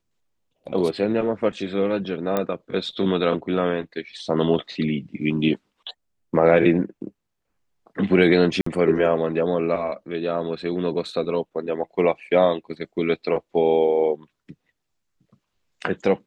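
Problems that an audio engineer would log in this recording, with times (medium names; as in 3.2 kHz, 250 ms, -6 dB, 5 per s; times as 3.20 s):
2.37 s: pop -10 dBFS
8.61–8.66 s: dropout 54 ms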